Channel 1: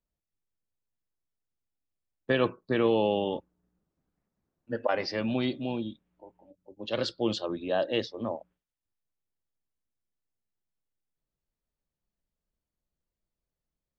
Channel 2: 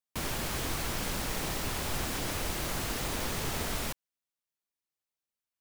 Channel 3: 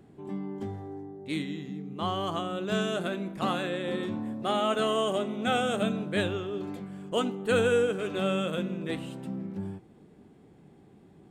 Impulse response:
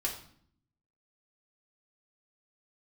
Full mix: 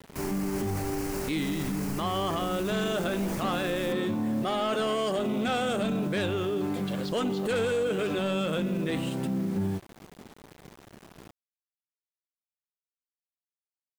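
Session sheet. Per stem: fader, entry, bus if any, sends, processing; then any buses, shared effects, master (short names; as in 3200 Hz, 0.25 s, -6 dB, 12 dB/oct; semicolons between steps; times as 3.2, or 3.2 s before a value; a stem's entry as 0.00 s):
-11.0 dB, 0.00 s, no send, compressor 4:1, threshold -28 dBFS, peak gain reduction 8 dB
-7.5 dB, 0.00 s, no send, bell 3500 Hz -14 dB 0.44 oct; limiter -25.5 dBFS, peak gain reduction 4.5 dB
+2.5 dB, 0.00 s, no send, dry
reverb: off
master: sample leveller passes 2; requantised 8-bit, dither none; limiter -22.5 dBFS, peak gain reduction 11 dB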